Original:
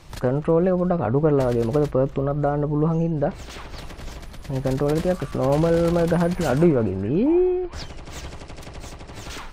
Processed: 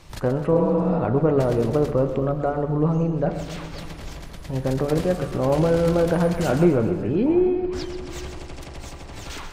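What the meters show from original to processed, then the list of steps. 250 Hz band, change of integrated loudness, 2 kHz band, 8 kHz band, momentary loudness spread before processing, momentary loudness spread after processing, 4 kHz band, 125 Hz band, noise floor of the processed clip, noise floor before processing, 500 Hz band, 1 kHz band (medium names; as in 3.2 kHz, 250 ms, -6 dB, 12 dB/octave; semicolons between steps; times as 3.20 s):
0.0 dB, -0.5 dB, 0.0 dB, +0.5 dB, 19 LU, 18 LU, +0.5 dB, 0.0 dB, -38 dBFS, -39 dBFS, 0.0 dB, 0.0 dB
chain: spectral replace 0.58–0.97 s, 220–4200 Hz both; de-hum 48.21 Hz, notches 40; on a send: two-band feedback delay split 450 Hz, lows 268 ms, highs 130 ms, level -11 dB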